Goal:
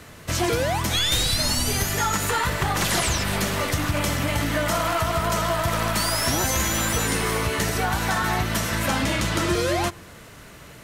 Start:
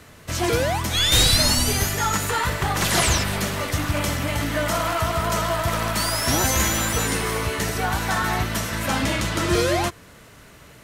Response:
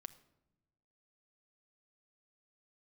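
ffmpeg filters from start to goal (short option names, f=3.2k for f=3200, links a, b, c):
-filter_complex "[0:a]acompressor=threshold=-22dB:ratio=6,asplit=2[a][b];[1:a]atrim=start_sample=2205[c];[b][c]afir=irnorm=-1:irlink=0,volume=-2.5dB[d];[a][d]amix=inputs=2:normalize=0"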